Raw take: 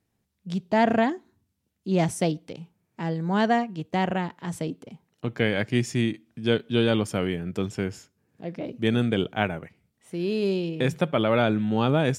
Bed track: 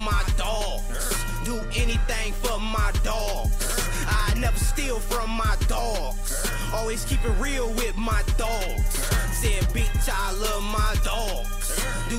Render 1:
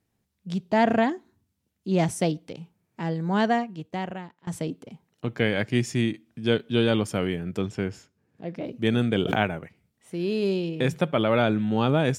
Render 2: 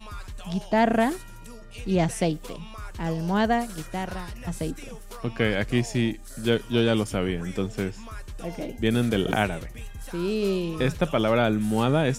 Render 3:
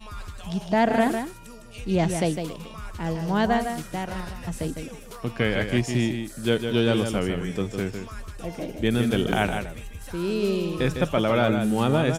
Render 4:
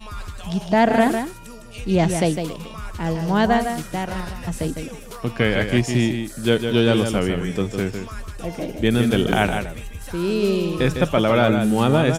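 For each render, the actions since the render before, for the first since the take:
3.39–4.47 fade out, to -20.5 dB; 7.61–8.55 high shelf 7500 Hz -10 dB; 9.15–9.61 backwards sustainer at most 38 dB/s
add bed track -15.5 dB
echo 0.155 s -7 dB
gain +4.5 dB

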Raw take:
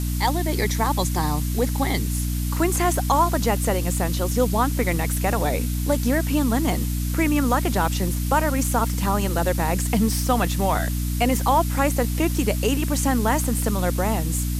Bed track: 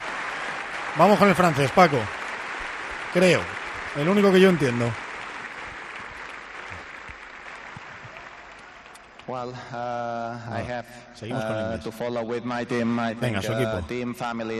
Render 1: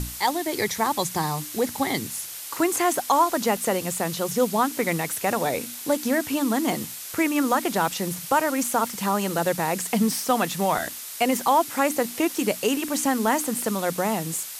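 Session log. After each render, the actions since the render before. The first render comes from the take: notches 60/120/180/240/300 Hz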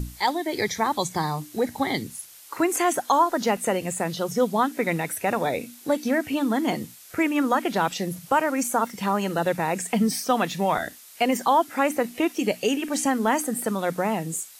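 noise print and reduce 11 dB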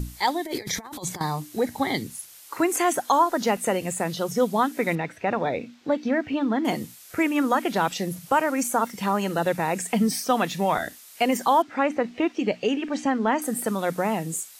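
0.45–1.21 negative-ratio compressor -31 dBFS, ratio -0.5; 4.95–6.65 air absorption 190 m; 11.62–13.42 air absorption 160 m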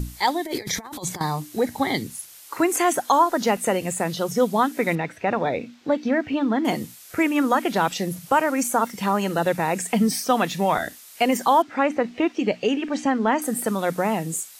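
gain +2 dB

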